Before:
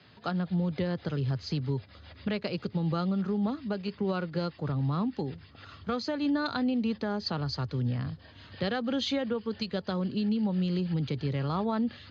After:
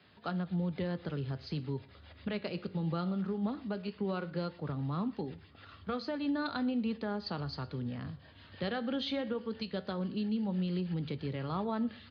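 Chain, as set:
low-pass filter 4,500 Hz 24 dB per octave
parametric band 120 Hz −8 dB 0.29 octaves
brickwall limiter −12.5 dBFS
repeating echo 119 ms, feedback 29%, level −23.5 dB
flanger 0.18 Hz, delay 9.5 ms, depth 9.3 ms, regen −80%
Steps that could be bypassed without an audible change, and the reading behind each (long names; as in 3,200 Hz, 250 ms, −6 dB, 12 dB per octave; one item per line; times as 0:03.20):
brickwall limiter −12.5 dBFS: peak of its input −17.5 dBFS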